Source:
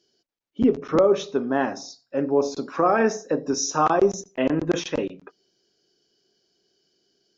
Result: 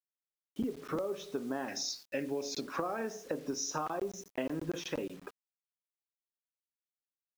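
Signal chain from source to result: 1.68–2.61 resonant high shelf 1600 Hz +9 dB, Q 3; compressor 16:1, threshold -30 dBFS, peak gain reduction 17 dB; bit-crush 9-bit; gain -2 dB

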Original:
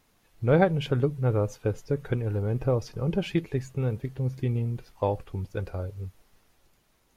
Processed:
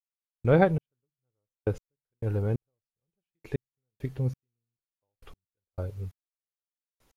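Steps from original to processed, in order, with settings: step gate "....xxx........x" 135 bpm -60 dB

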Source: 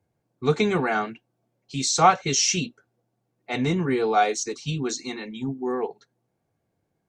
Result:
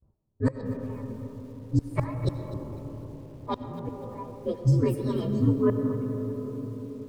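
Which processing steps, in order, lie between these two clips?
inharmonic rescaling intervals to 128%; flipped gate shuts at -19 dBFS, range -27 dB; tilt -3 dB/oct; gate with hold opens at -57 dBFS; dynamic EQ 980 Hz, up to +5 dB, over -50 dBFS, Q 1.6; on a send at -7 dB: reverb RT60 4.4 s, pre-delay 55 ms; on the sum: low-pass opened by the level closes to 1000 Hz, open at -20.5 dBFS; in parallel at -2 dB: compressor 6:1, threshold -38 dBFS, peak gain reduction 19 dB; on the sum: lo-fi delay 0.251 s, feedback 35%, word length 8-bit, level -15 dB

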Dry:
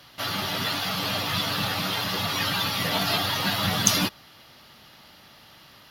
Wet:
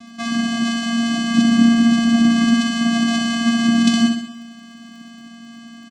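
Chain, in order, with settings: 1.36–2.54 low shelf 450 Hz +7.5 dB; in parallel at +1 dB: compressor, threshold -34 dBFS, peak gain reduction 19 dB; on the sum: added noise brown -47 dBFS; vocoder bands 4, square 232 Hz; crackle 40/s -50 dBFS; feedback echo 64 ms, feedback 53%, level -5 dB; on a send at -14 dB: reverb RT60 0.55 s, pre-delay 17 ms; on the sum: gain +6 dB

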